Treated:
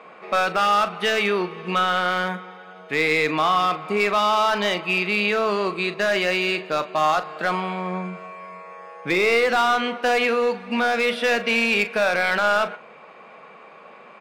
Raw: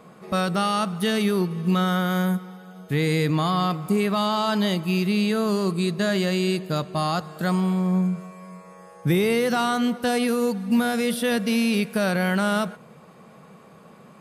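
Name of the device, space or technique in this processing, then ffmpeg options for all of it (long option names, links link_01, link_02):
megaphone: -filter_complex "[0:a]highpass=510,lowpass=3000,equalizer=frequency=2400:width_type=o:width=0.43:gain=7.5,asoftclip=type=hard:threshold=-21dB,asplit=2[link_01][link_02];[link_02]adelay=39,volume=-12.5dB[link_03];[link_01][link_03]amix=inputs=2:normalize=0,volume=7dB"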